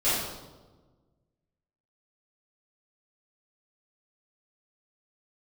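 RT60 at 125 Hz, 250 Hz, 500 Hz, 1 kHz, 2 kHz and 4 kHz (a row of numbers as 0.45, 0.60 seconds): 2.0, 1.7, 1.4, 1.2, 0.80, 0.85 seconds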